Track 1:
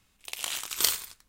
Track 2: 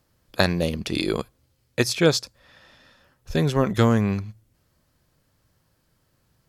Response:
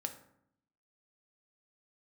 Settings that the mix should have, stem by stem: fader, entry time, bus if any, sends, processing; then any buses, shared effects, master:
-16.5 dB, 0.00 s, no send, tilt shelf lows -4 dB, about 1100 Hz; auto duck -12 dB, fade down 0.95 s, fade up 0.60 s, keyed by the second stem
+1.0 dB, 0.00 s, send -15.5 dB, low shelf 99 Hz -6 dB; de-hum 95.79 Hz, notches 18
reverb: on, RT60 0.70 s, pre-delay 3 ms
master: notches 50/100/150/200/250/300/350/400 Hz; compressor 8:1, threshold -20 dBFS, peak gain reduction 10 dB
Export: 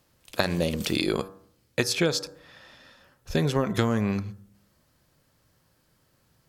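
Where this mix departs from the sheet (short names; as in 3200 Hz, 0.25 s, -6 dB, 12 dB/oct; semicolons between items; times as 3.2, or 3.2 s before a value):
stem 1 -16.5 dB -> -10.0 dB; master: missing notches 50/100/150/200/250/300/350/400 Hz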